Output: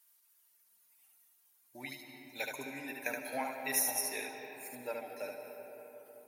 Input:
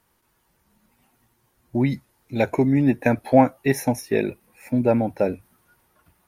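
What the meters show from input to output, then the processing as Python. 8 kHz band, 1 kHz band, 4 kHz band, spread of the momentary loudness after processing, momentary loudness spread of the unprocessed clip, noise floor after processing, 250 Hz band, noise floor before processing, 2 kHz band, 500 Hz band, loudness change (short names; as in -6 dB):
+3.0 dB, -16.5 dB, -2.0 dB, 18 LU, 12 LU, -70 dBFS, -27.0 dB, -68 dBFS, -8.0 dB, -20.0 dB, -16.0 dB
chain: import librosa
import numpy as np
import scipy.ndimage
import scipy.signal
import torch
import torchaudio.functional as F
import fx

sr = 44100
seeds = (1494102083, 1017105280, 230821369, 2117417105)

p1 = fx.dereverb_blind(x, sr, rt60_s=1.6)
p2 = fx.highpass(p1, sr, hz=150.0, slope=6)
p3 = np.diff(p2, prepend=0.0)
p4 = p3 + 0.35 * np.pad(p3, (int(6.7 * sr / 1000.0), 0))[:len(p3)]
p5 = p4 + fx.echo_single(p4, sr, ms=73, db=-4.0, dry=0)
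y = fx.rev_freeverb(p5, sr, rt60_s=4.2, hf_ratio=0.4, predelay_ms=110, drr_db=4.5)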